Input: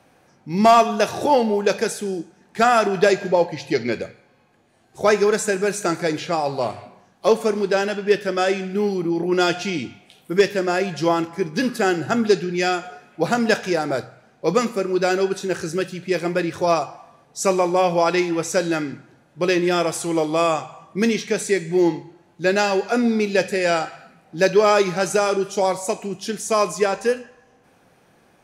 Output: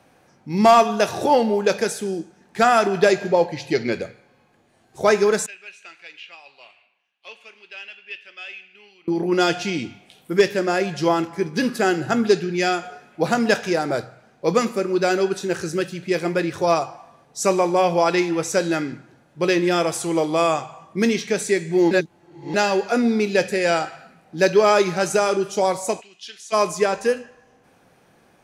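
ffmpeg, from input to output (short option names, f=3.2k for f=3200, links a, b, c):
-filter_complex "[0:a]asettb=1/sr,asplit=3[a][b][c];[a]atrim=end=5.464[d];[b]atrim=start=5.46:end=9.08,asetpts=PTS-STARTPTS,afade=t=in:d=0.004:c=qsin,afade=t=out:st=3.616:d=0.004:c=qsin,bandpass=f=2.7k:t=q:w=6.6[e];[c]atrim=start=9.076[f];[d][e]acrossfade=d=0.004:c1=hsin:c2=qsin[g];[g][f]acrossfade=d=0.004:c1=qsin:c2=hsin,asplit=3[h][i][j];[h]afade=t=out:st=26:d=0.02[k];[i]bandpass=f=3.3k:t=q:w=1.8,afade=t=in:st=26:d=0.02,afade=t=out:st=26.52:d=0.02[l];[j]afade=t=in:st=26.52:d=0.02[m];[k][l][m]amix=inputs=3:normalize=0,asplit=3[n][o][p];[n]atrim=end=21.912[q];[o]atrim=start=21.908:end=22.542,asetpts=PTS-STARTPTS,areverse[r];[p]atrim=start=22.538[s];[q][r]acrossfade=d=0.004:c1=hsin:c2=hsin[t];[t][s]acrossfade=d=0.004:c1=hsin:c2=hsin"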